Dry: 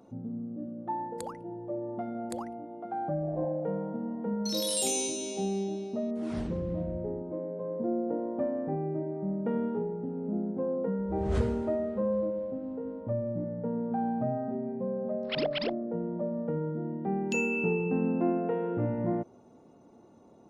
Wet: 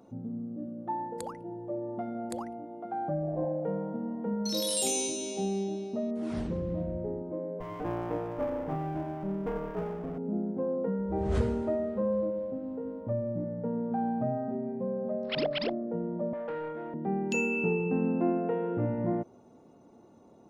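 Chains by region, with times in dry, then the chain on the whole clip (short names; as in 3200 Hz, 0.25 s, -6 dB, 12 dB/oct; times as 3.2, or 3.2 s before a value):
7.6–10.18 minimum comb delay 6.6 ms + bell 4100 Hz -8 dB 0.35 oct + decimation joined by straight lines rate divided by 3×
16.33–16.94 HPF 1400 Hz 6 dB/oct + overdrive pedal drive 22 dB, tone 2800 Hz, clips at -26 dBFS
whole clip: dry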